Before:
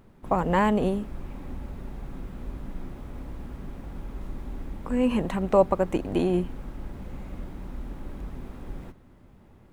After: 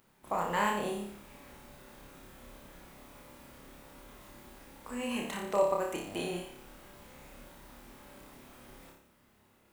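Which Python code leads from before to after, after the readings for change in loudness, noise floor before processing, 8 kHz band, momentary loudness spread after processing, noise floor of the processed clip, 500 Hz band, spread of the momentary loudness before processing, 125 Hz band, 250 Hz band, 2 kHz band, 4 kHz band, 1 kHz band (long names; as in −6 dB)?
−7.0 dB, −54 dBFS, can't be measured, 23 LU, −66 dBFS, −8.0 dB, 18 LU, −15.5 dB, −13.0 dB, −2.0 dB, +0.5 dB, −5.5 dB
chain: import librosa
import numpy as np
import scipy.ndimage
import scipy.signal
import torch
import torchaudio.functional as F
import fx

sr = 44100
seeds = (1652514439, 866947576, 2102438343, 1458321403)

p1 = fx.tilt_eq(x, sr, slope=3.5)
p2 = p1 + fx.room_flutter(p1, sr, wall_m=5.0, rt60_s=0.61, dry=0)
y = p2 * 10.0 ** (-8.5 / 20.0)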